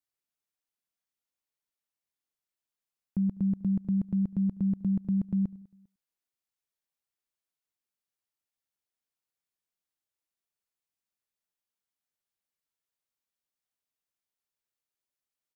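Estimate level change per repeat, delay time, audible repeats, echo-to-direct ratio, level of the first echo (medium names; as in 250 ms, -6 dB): no regular repeats, 102 ms, 3, -20.0 dB, -23.0 dB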